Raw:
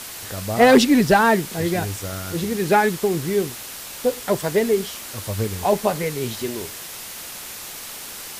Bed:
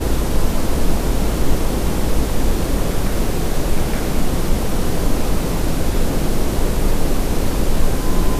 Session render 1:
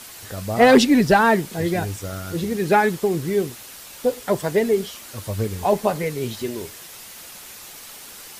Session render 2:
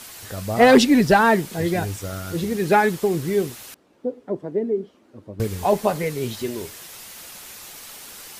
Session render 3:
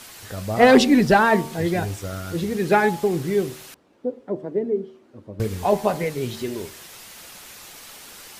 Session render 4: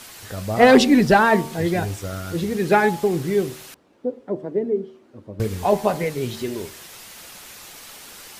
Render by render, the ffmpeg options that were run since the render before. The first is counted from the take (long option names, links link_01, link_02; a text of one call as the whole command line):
ffmpeg -i in.wav -af "afftdn=noise_reduction=6:noise_floor=-35" out.wav
ffmpeg -i in.wav -filter_complex "[0:a]asettb=1/sr,asplit=3[link_01][link_02][link_03];[link_01]atrim=end=3.744[link_04];[link_02]atrim=start=3.74:end=5.4,asetpts=PTS-STARTPTS,afade=type=in:duration=0.004:curve=qsin,afade=type=out:start_time=1.656:duration=0.004:curve=qsin,bandpass=frequency=300:width_type=q:width=1.8[link_05];[link_03]atrim=start=5.396[link_06];[link_04][link_05]acrossfade=duration=0.004:curve1=hsin:curve2=qsin[link_07];[link_07][link_06]acrossfade=duration=0.004:curve1=qsin:curve2=hsin" out.wav
ffmpeg -i in.wav -af "highshelf=frequency=7000:gain=-5,bandreject=frequency=76.2:width_type=h:width=4,bandreject=frequency=152.4:width_type=h:width=4,bandreject=frequency=228.6:width_type=h:width=4,bandreject=frequency=304.8:width_type=h:width=4,bandreject=frequency=381:width_type=h:width=4,bandreject=frequency=457.2:width_type=h:width=4,bandreject=frequency=533.4:width_type=h:width=4,bandreject=frequency=609.6:width_type=h:width=4,bandreject=frequency=685.8:width_type=h:width=4,bandreject=frequency=762:width_type=h:width=4,bandreject=frequency=838.2:width_type=h:width=4,bandreject=frequency=914.4:width_type=h:width=4,bandreject=frequency=990.6:width_type=h:width=4,bandreject=frequency=1066.8:width_type=h:width=4,bandreject=frequency=1143:width_type=h:width=4" out.wav
ffmpeg -i in.wav -af "volume=1dB,alimiter=limit=-3dB:level=0:latency=1" out.wav